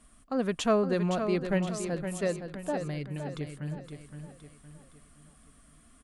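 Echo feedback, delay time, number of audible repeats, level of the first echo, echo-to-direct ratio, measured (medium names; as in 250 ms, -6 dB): 42%, 516 ms, 4, -8.0 dB, -7.0 dB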